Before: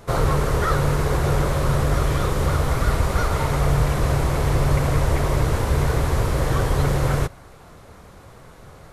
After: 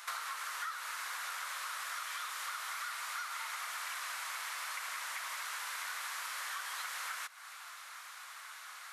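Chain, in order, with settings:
inverse Chebyshev high-pass filter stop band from 210 Hz, stop band 80 dB
downward compressor 10 to 1, threshold −43 dBFS, peak gain reduction 20 dB
level +5 dB

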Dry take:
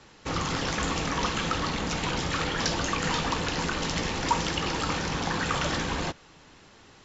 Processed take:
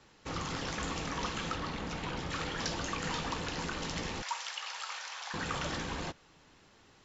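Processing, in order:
0:01.54–0:02.29: high-shelf EQ 6,800 Hz → 5,300 Hz −11 dB
0:04.22–0:05.34: Bessel high-pass filter 1,100 Hz, order 8
level −8 dB

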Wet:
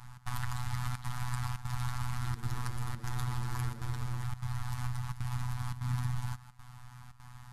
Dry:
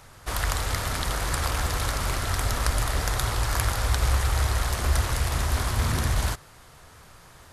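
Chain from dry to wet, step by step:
elliptic band-stop filter 200–830 Hz, stop band 40 dB
tilt shelving filter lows +7 dB, about 1,100 Hz
downward compressor 6 to 1, threshold −26 dBFS, peak gain reduction 14 dB
phases set to zero 124 Hz
gate pattern "xx.xxxxxxxx.xxxx" 173 BPM −12 dB
0:02.00–0:04.24: echo with shifted repeats 119 ms, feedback 58%, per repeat +110 Hz, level −19.5 dB

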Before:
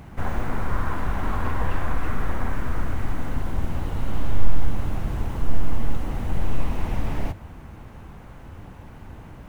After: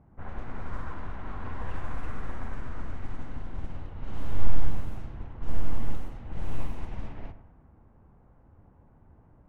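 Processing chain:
feedback echo with a low-pass in the loop 100 ms, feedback 35%, low-pass 2,000 Hz, level −9.5 dB
low-pass that shuts in the quiet parts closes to 980 Hz, open at −10.5 dBFS
expander for the loud parts 1.5 to 1, over −25 dBFS
level −4.5 dB

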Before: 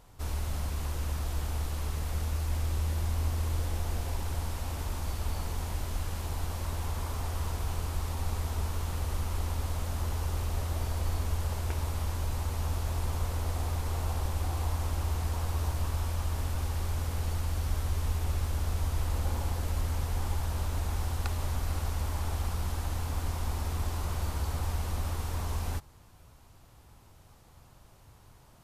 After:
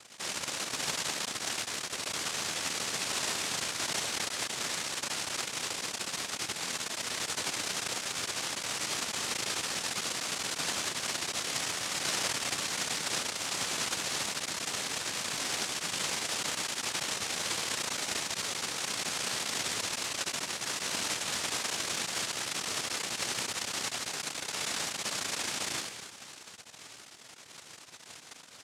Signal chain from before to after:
in parallel at −7 dB: sine wavefolder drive 15 dB, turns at −18.5 dBFS
0:12.03–0:12.53: on the sum: comb filter 3.1 ms, depth 93%
0:23.73–0:24.51: Bessel low-pass filter 650 Hz
on a send: ambience of single reflections 11 ms −10 dB, 76 ms −4.5 dB
on the sum: spring reverb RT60 3 s, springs 32 ms, DRR 9.5 dB
half-wave rectification
cochlear-implant simulation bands 1
level −3 dB

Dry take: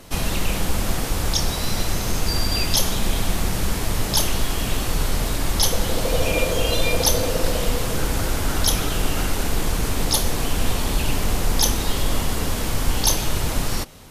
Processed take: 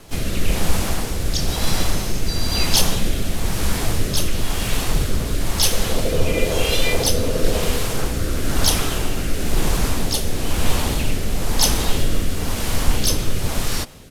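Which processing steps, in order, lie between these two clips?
rotating-speaker cabinet horn 1 Hz
pitch-shifted copies added −3 semitones −5 dB, +4 semitones −13 dB
level +2 dB

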